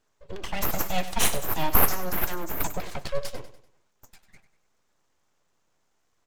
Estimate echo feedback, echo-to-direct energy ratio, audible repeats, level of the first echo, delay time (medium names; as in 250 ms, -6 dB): 42%, -12.0 dB, 3, -13.0 dB, 97 ms